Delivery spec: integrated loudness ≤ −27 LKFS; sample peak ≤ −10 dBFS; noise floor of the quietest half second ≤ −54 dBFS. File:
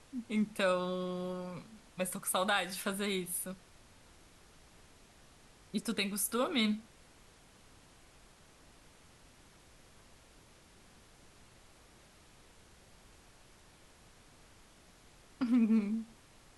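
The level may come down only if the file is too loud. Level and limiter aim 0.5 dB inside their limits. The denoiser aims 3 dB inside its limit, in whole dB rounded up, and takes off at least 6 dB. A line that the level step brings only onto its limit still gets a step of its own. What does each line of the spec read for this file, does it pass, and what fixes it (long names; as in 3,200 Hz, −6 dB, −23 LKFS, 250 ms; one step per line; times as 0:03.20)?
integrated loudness −34.0 LKFS: in spec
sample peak −17.5 dBFS: in spec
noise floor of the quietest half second −60 dBFS: in spec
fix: no processing needed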